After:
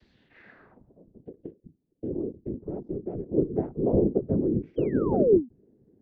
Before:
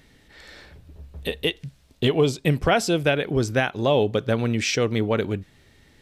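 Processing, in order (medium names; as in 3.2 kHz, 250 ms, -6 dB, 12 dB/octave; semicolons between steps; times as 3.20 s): vocoder on a broken chord major triad, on D3, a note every 87 ms; treble shelf 5.5 kHz +8 dB; whisper effect; 1.22–3.31 s: level held to a coarse grid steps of 15 dB; 4.76–5.49 s: painted sound fall 220–3300 Hz -19 dBFS; low-pass sweep 4.4 kHz -> 400 Hz, 0.09–1.17 s; endings held to a fixed fall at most 280 dB/s; trim -5 dB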